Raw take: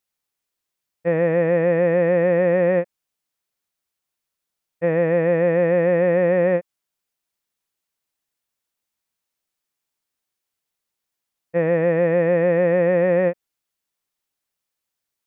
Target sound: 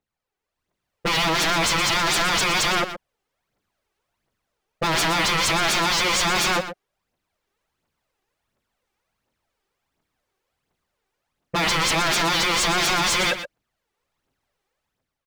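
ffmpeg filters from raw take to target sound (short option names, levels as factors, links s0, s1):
-filter_complex "[0:a]lowpass=f=1100:p=1,dynaudnorm=f=240:g=5:m=2.82,aphaser=in_gain=1:out_gain=1:delay=2.7:decay=0.61:speed=1.4:type=triangular,aeval=exprs='0.0944*(abs(mod(val(0)/0.0944+3,4)-2)-1)':c=same,asplit=2[s0][s1];[s1]aecho=0:1:121:0.282[s2];[s0][s2]amix=inputs=2:normalize=0,volume=1.58"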